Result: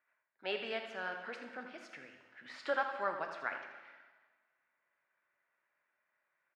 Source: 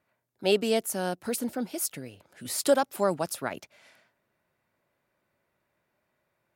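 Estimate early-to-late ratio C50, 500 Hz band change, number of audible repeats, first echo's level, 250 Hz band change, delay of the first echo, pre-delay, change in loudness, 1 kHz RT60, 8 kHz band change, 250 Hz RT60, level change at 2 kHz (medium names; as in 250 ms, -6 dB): 5.5 dB, -13.5 dB, 1, -10.0 dB, -20.0 dB, 81 ms, 5 ms, -11.0 dB, 1.4 s, under -30 dB, 1.4 s, -1.0 dB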